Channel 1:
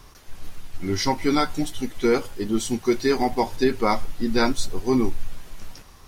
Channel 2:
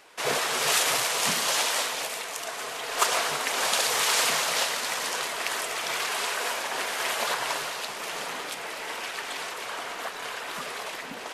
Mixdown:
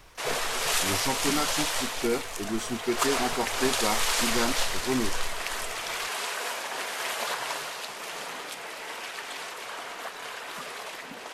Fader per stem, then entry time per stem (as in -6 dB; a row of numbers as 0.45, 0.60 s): -7.5, -3.0 dB; 0.00, 0.00 s